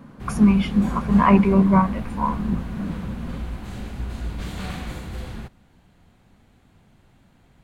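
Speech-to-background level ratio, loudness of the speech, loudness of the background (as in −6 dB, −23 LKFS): 14.5 dB, −19.5 LKFS, −34.0 LKFS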